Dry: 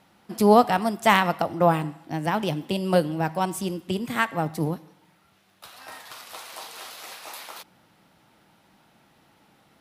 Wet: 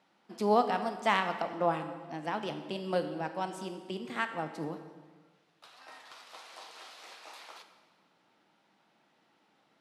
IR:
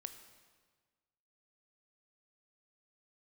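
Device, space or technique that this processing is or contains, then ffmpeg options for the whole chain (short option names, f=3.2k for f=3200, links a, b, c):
supermarket ceiling speaker: -filter_complex "[0:a]highpass=230,lowpass=6.4k[a];[1:a]atrim=start_sample=2205[b];[a][b]afir=irnorm=-1:irlink=0,volume=-4.5dB"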